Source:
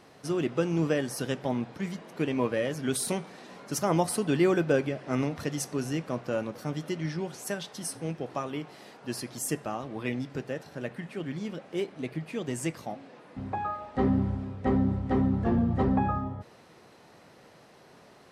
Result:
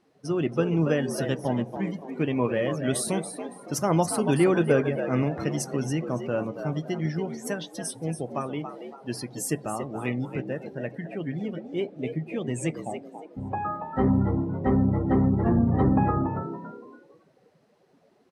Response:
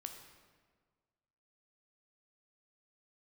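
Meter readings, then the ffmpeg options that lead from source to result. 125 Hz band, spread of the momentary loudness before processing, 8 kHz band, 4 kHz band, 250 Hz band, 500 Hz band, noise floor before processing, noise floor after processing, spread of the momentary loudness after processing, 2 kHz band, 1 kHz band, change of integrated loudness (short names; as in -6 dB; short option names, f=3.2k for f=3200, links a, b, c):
+5.0 dB, 11 LU, +1.5 dB, 0.0 dB, +3.5 dB, +3.0 dB, -55 dBFS, -62 dBFS, 13 LU, +2.0 dB, +3.0 dB, +3.5 dB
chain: -filter_complex "[0:a]asplit=2[a][b];[b]asplit=4[c][d][e][f];[c]adelay=281,afreqshift=72,volume=-8dB[g];[d]adelay=562,afreqshift=144,volume=-16.4dB[h];[e]adelay=843,afreqshift=216,volume=-24.8dB[i];[f]adelay=1124,afreqshift=288,volume=-33.2dB[j];[g][h][i][j]amix=inputs=4:normalize=0[k];[a][k]amix=inputs=2:normalize=0,afftdn=nr=17:nf=-43,adynamicequalizer=threshold=0.00891:dfrequency=130:dqfactor=1.7:tfrequency=130:tqfactor=1.7:attack=5:release=100:ratio=0.375:range=2:mode=boostabove:tftype=bell,volume=2dB"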